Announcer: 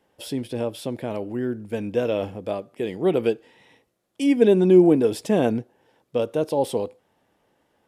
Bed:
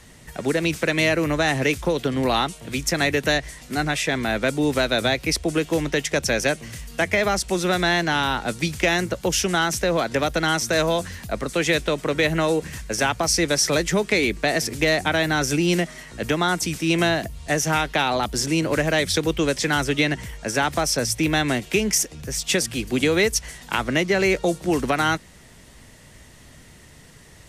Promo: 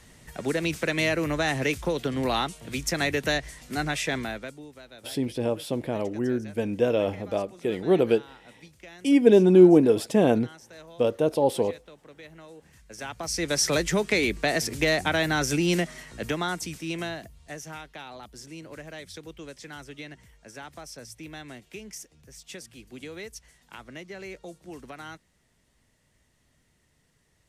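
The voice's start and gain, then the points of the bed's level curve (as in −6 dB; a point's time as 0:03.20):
4.85 s, 0.0 dB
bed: 0:04.18 −5 dB
0:04.72 −26.5 dB
0:12.54 −26.5 dB
0:13.61 −3.5 dB
0:15.98 −3.5 dB
0:17.93 −20.5 dB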